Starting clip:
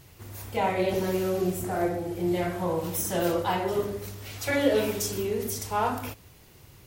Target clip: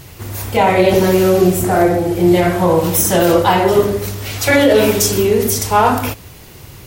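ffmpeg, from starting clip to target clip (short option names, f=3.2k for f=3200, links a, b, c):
-af "alimiter=level_in=16.5dB:limit=-1dB:release=50:level=0:latency=1,volume=-1dB"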